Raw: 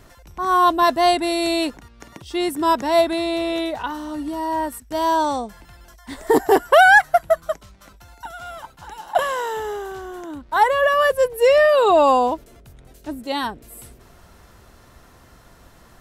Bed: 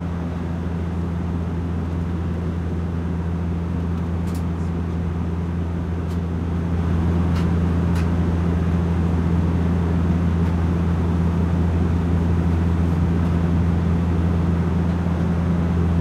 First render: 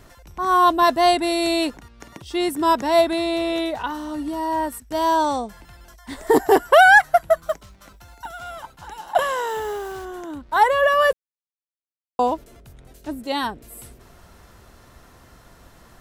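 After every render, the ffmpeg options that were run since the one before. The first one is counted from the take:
-filter_complex "[0:a]asettb=1/sr,asplit=3[s0][s1][s2];[s0]atrim=end=7.364[s3];[s1]atrim=start=7.36:end=8.44,asetpts=PTS-STARTPTS,afade=t=in:d=0.004:c=qsin,afade=t=out:st=1.076:d=0.004:c=qsin,acrusher=bits=7:mode=log:mix=0:aa=0.000001[s4];[s2]atrim=start=8.436[s5];[s3][s4]acrossfade=d=0.004:c1=hsin:c2=qsin[s6];[s6][s5]acrossfade=d=0.004:c1=qsin:c2=hsin,asettb=1/sr,asplit=3[s7][s8][s9];[s7]atrim=end=9.494[s10];[s8]atrim=start=9.49:end=10.05,asetpts=PTS-STARTPTS,afade=t=in:d=0.004:c=qsin,afade=t=out:st=0.556:d=0.004:c=qsin,acrusher=bits=6:mix=0:aa=0.5[s11];[s9]atrim=start=10.046[s12];[s10][s11]acrossfade=d=0.004:c1=hsin:c2=qsin[s13];[s13][s12]acrossfade=d=0.004:c1=qsin:c2=hsin,asplit=3[s14][s15][s16];[s14]atrim=end=11.13,asetpts=PTS-STARTPTS,afade=t=out:st=11.126:d=0.004:c=hsin[s17];[s15]atrim=start=11.13:end=12.19,asetpts=PTS-STARTPTS,volume=0[s18];[s16]atrim=start=12.19,asetpts=PTS-STARTPTS,afade=t=in:d=0.004:c=hsin[s19];[s17][s18][s19]concat=n=3:v=0:a=1"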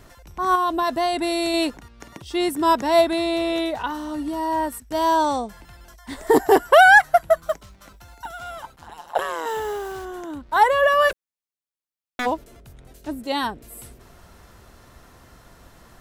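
-filter_complex "[0:a]asettb=1/sr,asplit=3[s0][s1][s2];[s0]atrim=end=0.554[s3];[s1]atrim=start=0.55:end=1.54,asetpts=PTS-STARTPTS,afade=t=in:d=0.004:c=qsin,afade=t=out:st=0.986:d=0.004:c=qsin,acompressor=threshold=0.126:ratio=6:attack=3.2:release=140:knee=1:detection=peak[s4];[s2]atrim=start=1.536[s5];[s3][s4]acrossfade=d=0.004:c1=hsin:c2=qsin[s6];[s6][s5]acrossfade=d=0.004:c1=qsin:c2=hsin,asettb=1/sr,asplit=3[s7][s8][s9];[s7]atrim=end=8.764[s10];[s8]atrim=start=8.76:end=9.46,asetpts=PTS-STARTPTS,afade=t=in:d=0.004:c=qsin,afade=t=out:st=0.696:d=0.004:c=qsin,tremolo=f=160:d=1[s11];[s9]atrim=start=9.456[s12];[s10][s11]acrossfade=d=0.004:c1=hsin:c2=qsin[s13];[s13][s12]acrossfade=d=0.004:c1=qsin:c2=hsin,asplit=3[s14][s15][s16];[s14]afade=t=out:st=11.08:d=0.02[s17];[s15]aeval=exprs='0.0944*(abs(mod(val(0)/0.0944+3,4)-2)-1)':c=same,afade=t=in:st=11.08:d=0.02,afade=t=out:st=12.25:d=0.02[s18];[s16]afade=t=in:st=12.25:d=0.02[s19];[s17][s18][s19]amix=inputs=3:normalize=0"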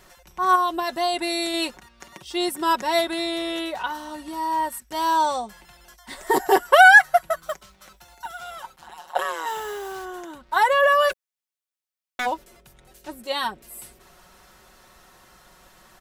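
-af "lowshelf=f=470:g=-10.5,aecho=1:1:5.4:0.56"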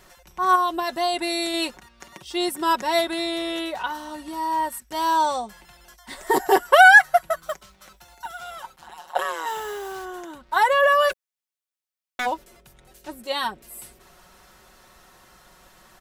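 -af anull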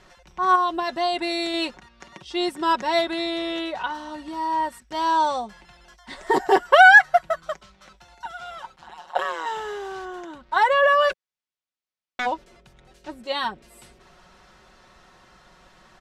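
-af "lowpass=5300,equalizer=f=170:t=o:w=0.77:g=2"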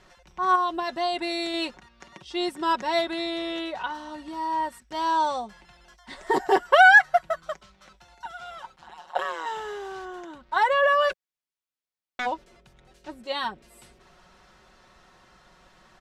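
-af "volume=0.708"

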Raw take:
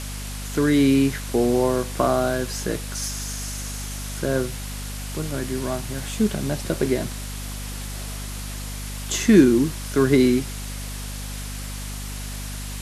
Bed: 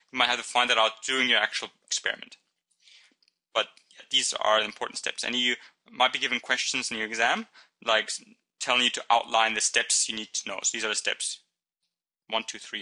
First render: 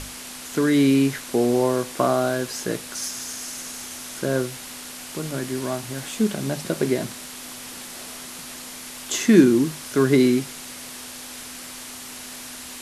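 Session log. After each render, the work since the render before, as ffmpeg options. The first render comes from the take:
-af "bandreject=f=50:t=h:w=6,bandreject=f=100:t=h:w=6,bandreject=f=150:t=h:w=6,bandreject=f=200:t=h:w=6"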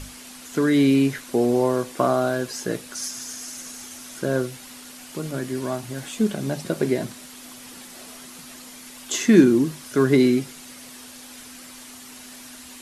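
-af "afftdn=nr=7:nf=-38"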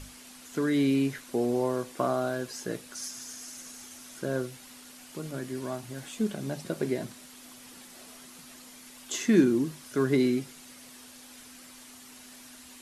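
-af "volume=0.422"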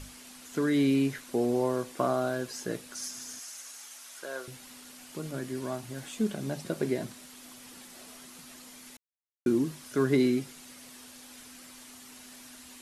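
-filter_complex "[0:a]asettb=1/sr,asplit=3[s0][s1][s2];[s0]atrim=end=3.394[s3];[s1]atrim=start=3.39:end=4.48,asetpts=PTS-STARTPTS,afade=t=in:d=0.004:c=qsin,afade=t=out:st=1.086:d=0.004:c=qsin,highpass=740[s4];[s2]atrim=start=4.476[s5];[s3][s4]acrossfade=d=0.004:c1=hsin:c2=qsin[s6];[s6][s5]acrossfade=d=0.004:c1=qsin:c2=hsin,asplit=3[s7][s8][s9];[s7]atrim=end=8.97,asetpts=PTS-STARTPTS,afade=t=out:st=8.966:d=0.004:c=hsin[s10];[s8]atrim=start=8.97:end=9.46,asetpts=PTS-STARTPTS,volume=0[s11];[s9]atrim=start=9.46,asetpts=PTS-STARTPTS,afade=t=in:d=0.004:c=hsin[s12];[s10][s11][s12]concat=n=3:v=0:a=1"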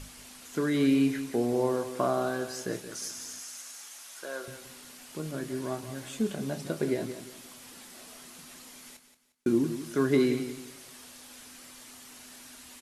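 -filter_complex "[0:a]asplit=2[s0][s1];[s1]adelay=26,volume=0.282[s2];[s0][s2]amix=inputs=2:normalize=0,aecho=1:1:177|354|531:0.282|0.0846|0.0254"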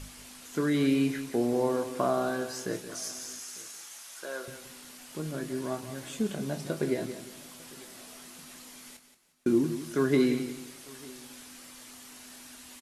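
-filter_complex "[0:a]asplit=2[s0][s1];[s1]adelay=20,volume=0.251[s2];[s0][s2]amix=inputs=2:normalize=0,aecho=1:1:900:0.0631"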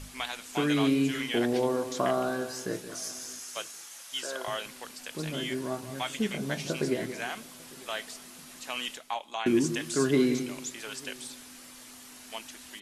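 -filter_complex "[1:a]volume=0.251[s0];[0:a][s0]amix=inputs=2:normalize=0"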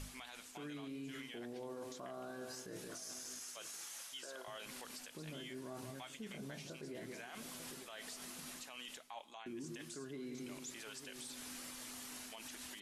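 -af "areverse,acompressor=threshold=0.0126:ratio=16,areverse,alimiter=level_in=5.62:limit=0.0631:level=0:latency=1:release=95,volume=0.178"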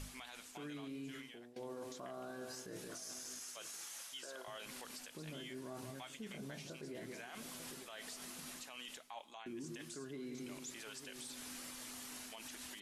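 -filter_complex "[0:a]asplit=2[s0][s1];[s0]atrim=end=1.56,asetpts=PTS-STARTPTS,afade=t=out:st=1.07:d=0.49:silence=0.149624[s2];[s1]atrim=start=1.56,asetpts=PTS-STARTPTS,afade=t=in:d=0.004:c=hsin:silence=0.149624[s3];[s2][s3]concat=n=2:v=0:a=1"

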